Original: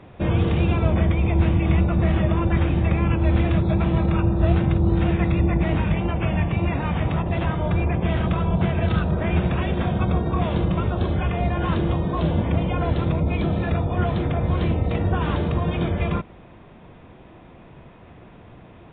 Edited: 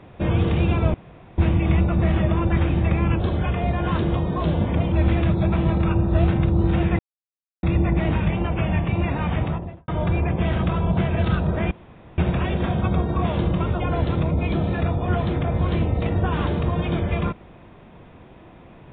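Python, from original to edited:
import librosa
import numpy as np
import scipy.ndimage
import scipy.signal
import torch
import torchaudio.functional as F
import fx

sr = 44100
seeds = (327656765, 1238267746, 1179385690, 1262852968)

y = fx.studio_fade_out(x, sr, start_s=7.0, length_s=0.52)
y = fx.edit(y, sr, fx.room_tone_fill(start_s=0.94, length_s=0.44),
    fx.insert_silence(at_s=5.27, length_s=0.64),
    fx.insert_room_tone(at_s=9.35, length_s=0.47),
    fx.move(start_s=10.97, length_s=1.72, to_s=3.2), tone=tone)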